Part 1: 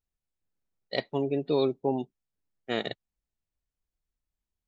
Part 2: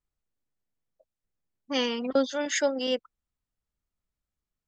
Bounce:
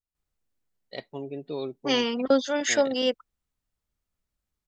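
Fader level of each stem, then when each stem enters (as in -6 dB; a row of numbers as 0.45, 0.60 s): -7.5, +3.0 dB; 0.00, 0.15 s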